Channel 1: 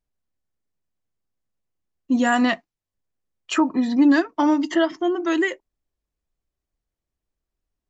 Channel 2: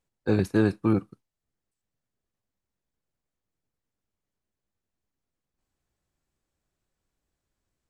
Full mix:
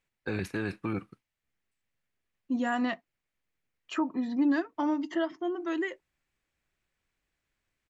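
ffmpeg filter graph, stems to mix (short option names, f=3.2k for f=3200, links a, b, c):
-filter_complex "[0:a]lowpass=f=3.1k:p=1,adelay=400,volume=-10dB[a];[1:a]alimiter=limit=-20dB:level=0:latency=1:release=55,equalizer=f=2.2k:t=o:w=1.4:g=13,volume=-3.5dB[b];[a][b]amix=inputs=2:normalize=0"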